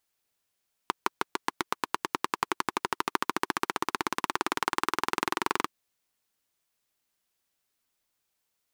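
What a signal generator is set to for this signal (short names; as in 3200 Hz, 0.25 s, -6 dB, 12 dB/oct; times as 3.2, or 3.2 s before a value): single-cylinder engine model, changing speed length 4.77 s, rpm 700, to 2700, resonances 360/1000 Hz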